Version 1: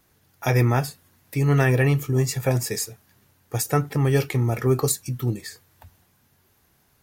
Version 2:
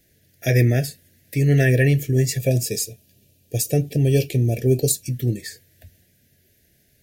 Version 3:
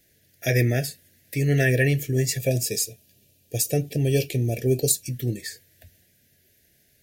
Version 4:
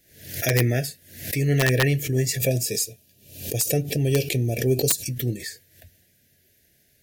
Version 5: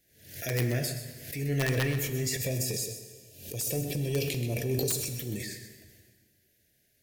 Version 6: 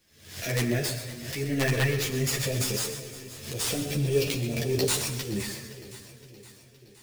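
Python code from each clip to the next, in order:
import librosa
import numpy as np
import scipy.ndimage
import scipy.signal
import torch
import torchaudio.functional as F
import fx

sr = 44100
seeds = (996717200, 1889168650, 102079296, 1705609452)

y1 = fx.spec_box(x, sr, start_s=2.39, length_s=2.64, low_hz=1000.0, high_hz=2300.0, gain_db=-13)
y1 = scipy.signal.sosfilt(scipy.signal.cheby1(3, 1.0, [640.0, 1700.0], 'bandstop', fs=sr, output='sos'), y1)
y1 = y1 * 10.0 ** (3.0 / 20.0)
y2 = fx.low_shelf(y1, sr, hz=420.0, db=-5.5)
y3 = (np.mod(10.0 ** (10.5 / 20.0) * y2 + 1.0, 2.0) - 1.0) / 10.0 ** (10.5 / 20.0)
y3 = fx.pre_swell(y3, sr, db_per_s=93.0)
y4 = fx.transient(y3, sr, attack_db=-5, sustain_db=8)
y4 = y4 + 10.0 ** (-11.0 / 20.0) * np.pad(y4, (int(128 * sr / 1000.0), 0))[:len(y4)]
y4 = fx.rev_plate(y4, sr, seeds[0], rt60_s=1.7, hf_ratio=0.85, predelay_ms=0, drr_db=8.0)
y4 = y4 * 10.0 ** (-8.5 / 20.0)
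y5 = fx.sample_hold(y4, sr, seeds[1], rate_hz=18000.0, jitter_pct=0)
y5 = fx.echo_feedback(y5, sr, ms=517, feedback_pct=58, wet_db=-16.5)
y5 = fx.ensemble(y5, sr)
y5 = y5 * 10.0 ** (6.5 / 20.0)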